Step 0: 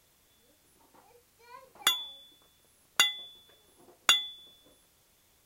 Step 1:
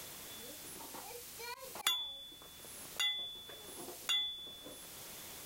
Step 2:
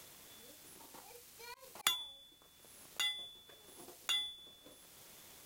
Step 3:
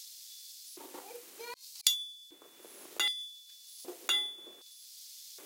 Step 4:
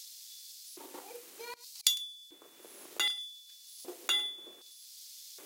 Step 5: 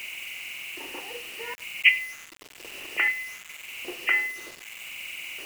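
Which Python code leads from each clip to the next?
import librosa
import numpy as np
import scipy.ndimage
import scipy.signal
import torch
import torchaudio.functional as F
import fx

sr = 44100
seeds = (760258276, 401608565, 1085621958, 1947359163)

y1 = fx.auto_swell(x, sr, attack_ms=121.0)
y1 = fx.band_squash(y1, sr, depth_pct=70)
y1 = F.gain(torch.from_numpy(y1), 5.5).numpy()
y2 = fx.power_curve(y1, sr, exponent=1.4)
y2 = F.gain(torch.from_numpy(y2), 4.0).numpy()
y3 = fx.filter_lfo_highpass(y2, sr, shape='square', hz=0.65, low_hz=350.0, high_hz=4600.0, q=2.7)
y3 = F.gain(torch.from_numpy(y3), 5.5).numpy()
y4 = y3 + 10.0 ** (-20.5 / 20.0) * np.pad(y3, (int(103 * sr / 1000.0), 0))[:len(y3)]
y5 = fx.freq_compress(y4, sr, knee_hz=1700.0, ratio=4.0)
y5 = fx.quant_dither(y5, sr, seeds[0], bits=8, dither='none')
y5 = F.gain(torch.from_numpy(y5), 6.5).numpy()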